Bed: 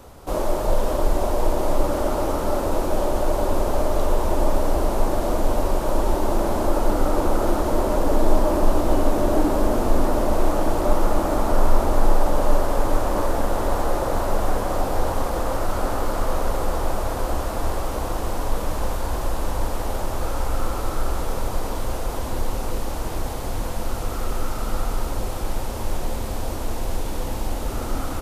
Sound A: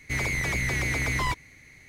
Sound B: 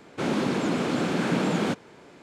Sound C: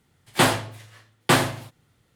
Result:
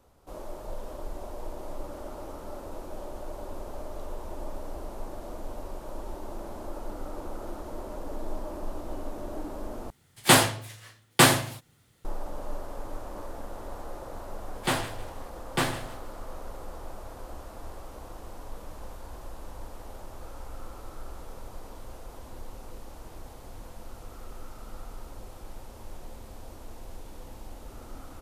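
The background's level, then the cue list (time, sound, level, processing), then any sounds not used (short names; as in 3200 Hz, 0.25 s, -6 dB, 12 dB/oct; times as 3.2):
bed -17.5 dB
9.9 replace with C -0.5 dB + high shelf 4500 Hz +7.5 dB
14.28 add C -9 dB + thinning echo 0.157 s, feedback 32%, level -14.5 dB
not used: A, B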